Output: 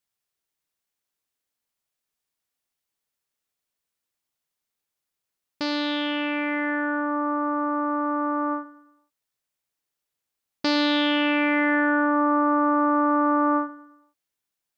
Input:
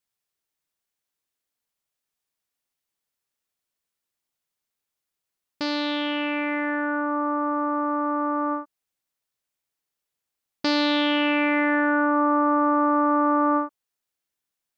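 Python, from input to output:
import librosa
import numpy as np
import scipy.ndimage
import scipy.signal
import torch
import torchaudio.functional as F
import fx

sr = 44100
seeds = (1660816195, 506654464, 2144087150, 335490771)

y = fx.echo_feedback(x, sr, ms=113, feedback_pct=41, wet_db=-16)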